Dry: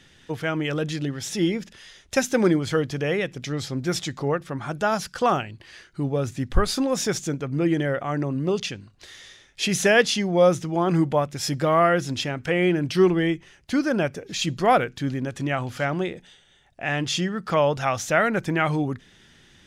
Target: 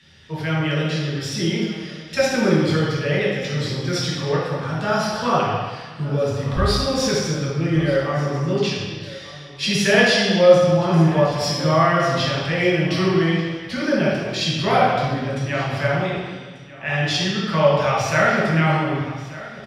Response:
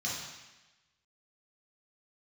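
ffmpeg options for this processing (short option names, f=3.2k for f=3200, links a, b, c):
-filter_complex "[0:a]aecho=1:1:1187:0.126[a];[1:a]atrim=start_sample=2205,asetrate=34398,aresample=44100[b];[a][b]afir=irnorm=-1:irlink=0,volume=-3dB"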